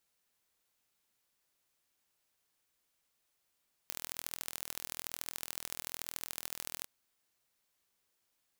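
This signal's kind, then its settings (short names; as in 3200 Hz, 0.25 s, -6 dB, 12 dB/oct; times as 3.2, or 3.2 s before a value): pulse train 41.1/s, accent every 3, -10 dBFS 2.96 s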